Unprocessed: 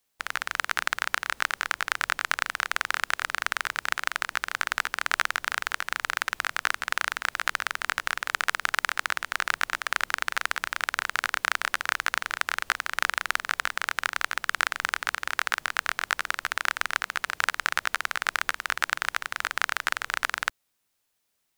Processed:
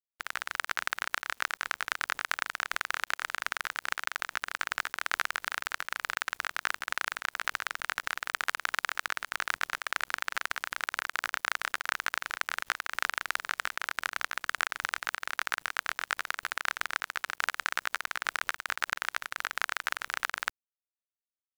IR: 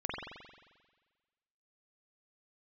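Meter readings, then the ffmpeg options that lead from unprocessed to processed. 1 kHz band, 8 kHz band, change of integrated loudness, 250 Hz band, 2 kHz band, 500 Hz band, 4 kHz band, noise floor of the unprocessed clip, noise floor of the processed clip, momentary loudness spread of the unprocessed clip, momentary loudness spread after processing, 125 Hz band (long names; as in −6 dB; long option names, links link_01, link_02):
−5.0 dB, −5.0 dB, −5.0 dB, −5.5 dB, −5.0 dB, −5.0 dB, −5.0 dB, −76 dBFS, below −85 dBFS, 2 LU, 2 LU, can't be measured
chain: -af "acrusher=bits=7:mix=0:aa=0.000001,volume=-5dB"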